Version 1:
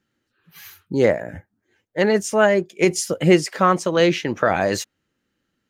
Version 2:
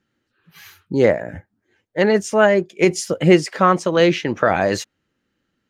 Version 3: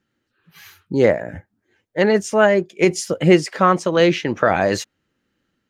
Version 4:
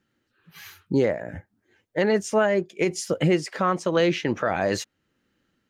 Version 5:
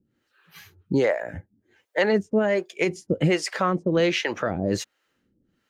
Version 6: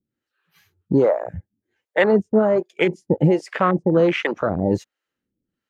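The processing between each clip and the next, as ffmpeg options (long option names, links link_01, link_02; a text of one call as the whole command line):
ffmpeg -i in.wav -af "highshelf=frequency=8800:gain=-11,volume=2dB" out.wav
ffmpeg -i in.wav -af "dynaudnorm=framelen=500:gausssize=3:maxgain=11.5dB,volume=-1dB" out.wav
ffmpeg -i in.wav -af "alimiter=limit=-11.5dB:level=0:latency=1:release=473" out.wav
ffmpeg -i in.wav -filter_complex "[0:a]acrossover=split=460[link_01][link_02];[link_01]aeval=exprs='val(0)*(1-1/2+1/2*cos(2*PI*1.3*n/s))':channel_layout=same[link_03];[link_02]aeval=exprs='val(0)*(1-1/2-1/2*cos(2*PI*1.3*n/s))':channel_layout=same[link_04];[link_03][link_04]amix=inputs=2:normalize=0,volume=6dB" out.wav
ffmpeg -i in.wav -af "afwtdn=0.0501,volume=5dB" out.wav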